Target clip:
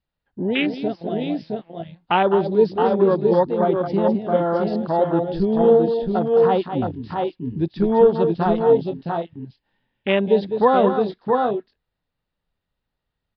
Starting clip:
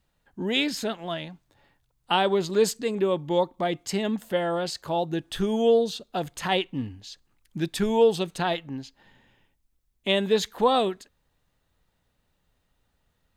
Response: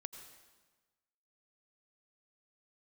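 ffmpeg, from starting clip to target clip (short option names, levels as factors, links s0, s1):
-af "acontrast=47,aecho=1:1:207|668|692:0.398|0.631|0.266,afwtdn=0.0891,aresample=11025,aresample=44100"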